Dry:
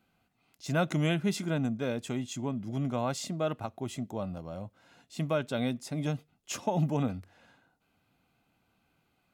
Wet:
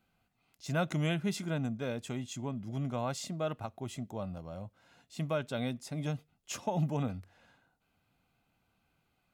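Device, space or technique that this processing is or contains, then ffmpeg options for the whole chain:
low shelf boost with a cut just above: -af "lowshelf=frequency=61:gain=7,equalizer=frequency=300:width_type=o:width=1:gain=-3,volume=-3dB"

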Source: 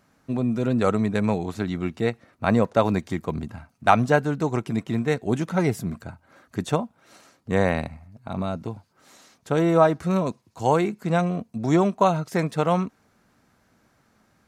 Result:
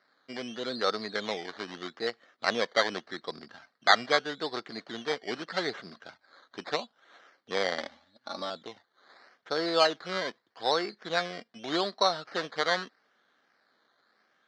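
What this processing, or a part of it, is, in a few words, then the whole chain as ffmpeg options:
circuit-bent sampling toy: -filter_complex "[0:a]asettb=1/sr,asplit=3[link_01][link_02][link_03];[link_01]atrim=end=7.784[link_04];[link_02]atrim=start=7.78:end=8.5,asetpts=PTS-STARTPTS,afade=type=in:duration=0.004:curve=qsin,afade=type=out:start_time=0.716:duration=0.004:curve=qsin,aecho=1:1:3.5:0.84,atrim=end_sample=31752[link_05];[link_03]atrim=start=8.496[link_06];[link_04][link_05]acrossfade=duration=0.004:curve1=hsin:curve2=qsin[link_07];[link_07][link_06]acrossfade=duration=0.004:curve1=qsin:curve2=hsin,acrusher=samples=13:mix=1:aa=0.000001:lfo=1:lforange=7.8:lforate=0.81,highpass=580,equalizer=frequency=650:width_type=q:width=4:gain=-3,equalizer=frequency=930:width_type=q:width=4:gain=-7,equalizer=frequency=1700:width_type=q:width=4:gain=4,equalizer=frequency=2600:width_type=q:width=4:gain=-10,equalizer=frequency=4200:width_type=q:width=4:gain=6,lowpass=frequency=4800:width=0.5412,lowpass=frequency=4800:width=1.3066,volume=-1.5dB"

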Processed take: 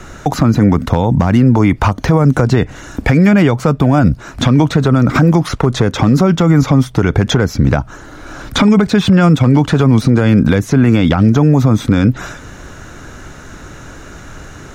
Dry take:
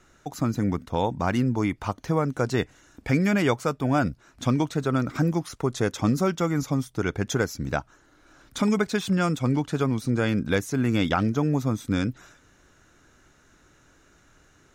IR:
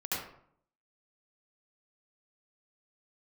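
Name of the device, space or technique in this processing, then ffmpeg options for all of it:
mastering chain: -filter_complex "[0:a]equalizer=frequency=340:width_type=o:width=1:gain=-3.5,acrossover=split=310|4500[link_01][link_02][link_03];[link_01]acompressor=threshold=-29dB:ratio=4[link_04];[link_02]acompressor=threshold=-32dB:ratio=4[link_05];[link_03]acompressor=threshold=-57dB:ratio=4[link_06];[link_04][link_05][link_06]amix=inputs=3:normalize=0,acompressor=threshold=-32dB:ratio=2,tiltshelf=frequency=1200:gain=3.5,asoftclip=type=hard:threshold=-20.5dB,alimiter=level_in=25.5dB:limit=-1dB:release=50:level=0:latency=1,volume=-1dB"

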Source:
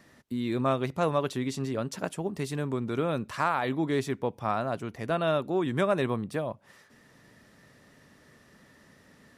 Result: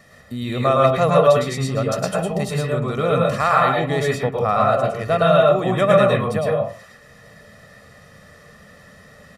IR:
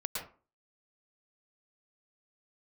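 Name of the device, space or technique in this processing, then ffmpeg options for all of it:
microphone above a desk: -filter_complex "[0:a]aecho=1:1:1.6:0.67[link_01];[1:a]atrim=start_sample=2205[link_02];[link_01][link_02]afir=irnorm=-1:irlink=0,volume=7.5dB"

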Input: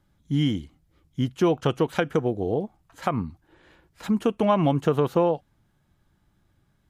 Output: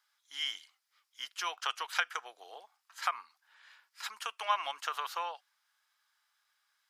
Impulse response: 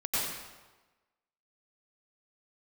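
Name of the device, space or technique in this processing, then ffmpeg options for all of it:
headphones lying on a table: -af "highpass=frequency=1100:width=0.5412,highpass=frequency=1100:width=1.3066,equalizer=frequency=5000:width_type=o:width=0.43:gain=7"

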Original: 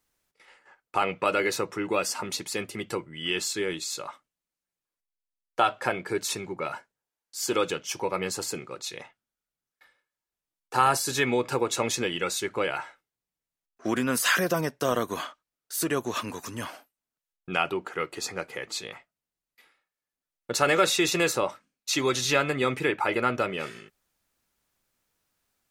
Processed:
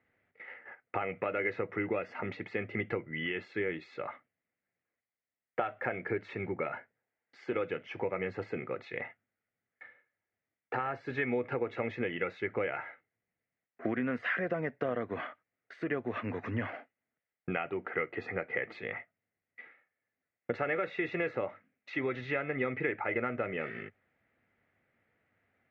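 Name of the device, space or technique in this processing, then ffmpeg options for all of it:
bass amplifier: -af "acompressor=threshold=-38dB:ratio=4,highpass=90,equalizer=frequency=100:width_type=q:width=4:gain=10,equalizer=frequency=240:width_type=q:width=4:gain=4,equalizer=frequency=480:width_type=q:width=4:gain=4,equalizer=frequency=690:width_type=q:width=4:gain=4,equalizer=frequency=1000:width_type=q:width=4:gain=-8,equalizer=frequency=2000:width_type=q:width=4:gain=10,lowpass=frequency=2300:width=0.5412,lowpass=frequency=2300:width=1.3066,volume=4dB"

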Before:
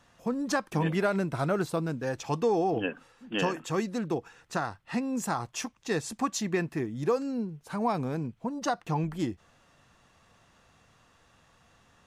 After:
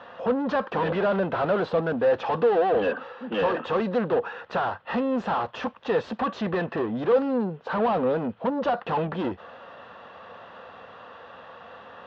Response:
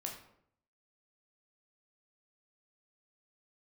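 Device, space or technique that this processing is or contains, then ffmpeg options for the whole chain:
overdrive pedal into a guitar cabinet: -filter_complex "[0:a]asplit=2[link_01][link_02];[link_02]highpass=frequency=720:poles=1,volume=30dB,asoftclip=type=tanh:threshold=-16.5dB[link_03];[link_01][link_03]amix=inputs=2:normalize=0,lowpass=frequency=1300:poles=1,volume=-6dB,highpass=76,equalizer=frequency=140:width_type=q:width=4:gain=-10,equalizer=frequency=320:width_type=q:width=4:gain=-7,equalizer=frequency=510:width_type=q:width=4:gain=7,equalizer=frequency=2200:width_type=q:width=4:gain=-9,lowpass=frequency=3600:width=0.5412,lowpass=frequency=3600:width=1.3066"

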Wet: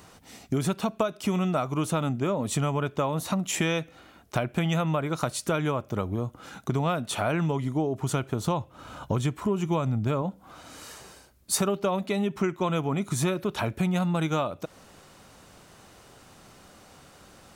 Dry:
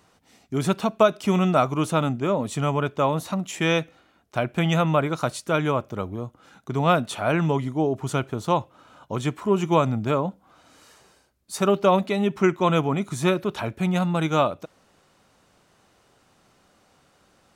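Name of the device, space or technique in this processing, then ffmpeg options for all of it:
ASMR close-microphone chain: -filter_complex "[0:a]asettb=1/sr,asplit=3[link_01][link_02][link_03];[link_01]atrim=end=8.454[link_04];[link_02]atrim=start=8.45:end=10.22,asetpts=PTS-STARTPTS,afade=type=in:duration=0.004:curve=qsin,afade=type=out:start_time=1.766:duration=0.004:curve=qsin,lowshelf=frequency=100:gain=11[link_05];[link_03]atrim=start=10.216[link_06];[link_04][link_05]acrossfade=duration=0.004:curve1=hsin:curve2=qsin[link_07];[link_07][link_06]acrossfade=duration=0.004:curve1=qsin:curve2=hsin,lowshelf=frequency=130:gain=4.5,acompressor=threshold=-32dB:ratio=6,highshelf=frequency=8200:gain=6,volume=7.5dB"

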